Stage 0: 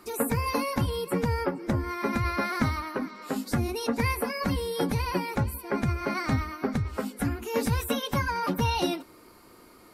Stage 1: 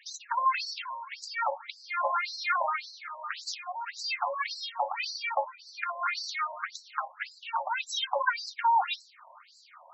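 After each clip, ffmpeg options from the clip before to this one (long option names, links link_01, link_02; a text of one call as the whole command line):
ffmpeg -i in.wav -af "afftfilt=real='re*between(b*sr/1024,740*pow(5700/740,0.5+0.5*sin(2*PI*1.8*pts/sr))/1.41,740*pow(5700/740,0.5+0.5*sin(2*PI*1.8*pts/sr))*1.41)':imag='im*between(b*sr/1024,740*pow(5700/740,0.5+0.5*sin(2*PI*1.8*pts/sr))/1.41,740*pow(5700/740,0.5+0.5*sin(2*PI*1.8*pts/sr))*1.41)':win_size=1024:overlap=0.75,volume=8dB" out.wav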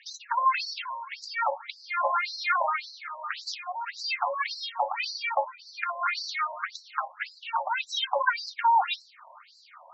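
ffmpeg -i in.wav -af "lowpass=frequency=5700:width=0.5412,lowpass=frequency=5700:width=1.3066,volume=2.5dB" out.wav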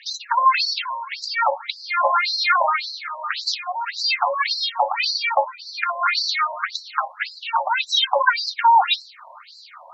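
ffmpeg -i in.wav -af "equalizer=frequency=4100:width=3.5:gain=7.5,volume=7.5dB" out.wav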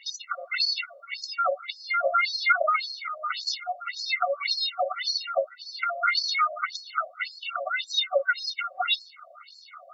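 ffmpeg -i in.wav -af "afftfilt=real='re*eq(mod(floor(b*sr/1024/380),2),1)':imag='im*eq(mod(floor(b*sr/1024/380),2),1)':win_size=1024:overlap=0.75,volume=-1.5dB" out.wav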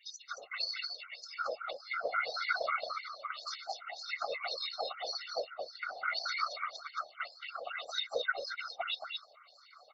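ffmpeg -i in.wav -af "aecho=1:1:223:0.562,afftfilt=real='hypot(re,im)*cos(2*PI*random(0))':imag='hypot(re,im)*sin(2*PI*random(1))':win_size=512:overlap=0.75,volume=-5.5dB" out.wav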